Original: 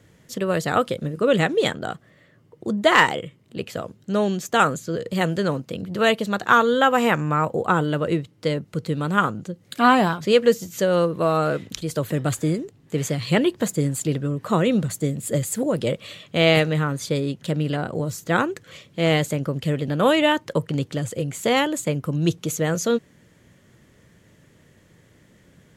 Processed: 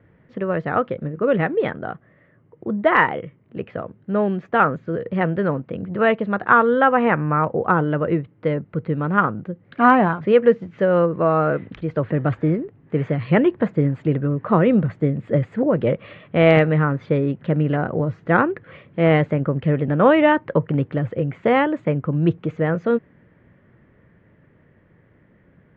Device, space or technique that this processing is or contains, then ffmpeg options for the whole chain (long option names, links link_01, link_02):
action camera in a waterproof case: -af "lowpass=frequency=2100:width=0.5412,lowpass=frequency=2100:width=1.3066,dynaudnorm=framelen=590:gausssize=13:maxgain=7dB" -ar 48000 -c:a aac -b:a 128k